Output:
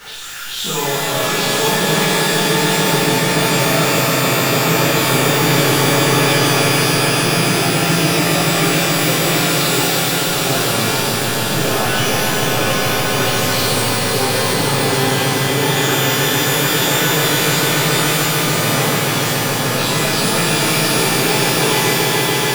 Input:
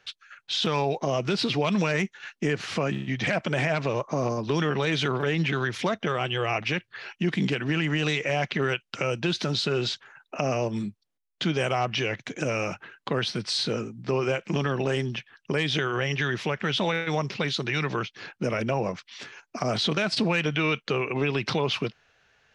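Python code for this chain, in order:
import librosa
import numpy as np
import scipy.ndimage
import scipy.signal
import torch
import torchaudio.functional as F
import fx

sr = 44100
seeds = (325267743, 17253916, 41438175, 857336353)

y = x + 0.5 * 10.0 ** (-28.0 / 20.0) * np.sign(x)
y = fx.echo_swell(y, sr, ms=144, loudest=5, wet_db=-6)
y = fx.rev_shimmer(y, sr, seeds[0], rt60_s=1.2, semitones=12, shimmer_db=-2, drr_db=-10.5)
y = y * 10.0 ** (-9.5 / 20.0)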